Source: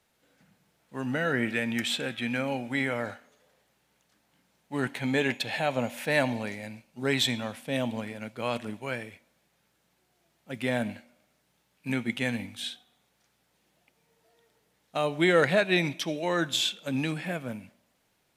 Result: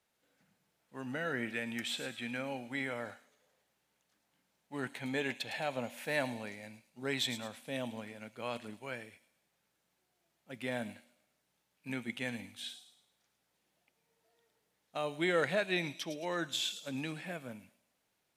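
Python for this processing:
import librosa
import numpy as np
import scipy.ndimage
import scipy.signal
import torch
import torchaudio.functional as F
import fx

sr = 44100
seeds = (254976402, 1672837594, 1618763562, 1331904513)

y = fx.low_shelf(x, sr, hz=200.0, db=-5.0)
y = fx.echo_wet_highpass(y, sr, ms=108, feedback_pct=39, hz=5100.0, wet_db=-5.5)
y = y * librosa.db_to_amplitude(-8.0)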